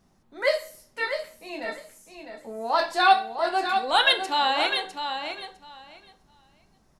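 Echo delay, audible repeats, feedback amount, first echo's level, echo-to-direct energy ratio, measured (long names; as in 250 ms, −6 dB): 654 ms, 2, 17%, −7.5 dB, −7.5 dB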